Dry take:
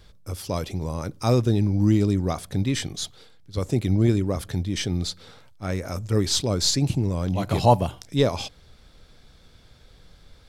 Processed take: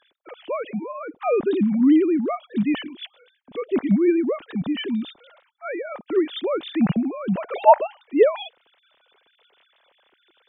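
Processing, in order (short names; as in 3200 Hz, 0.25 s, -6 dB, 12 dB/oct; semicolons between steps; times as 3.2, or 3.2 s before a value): sine-wave speech; gain +1.5 dB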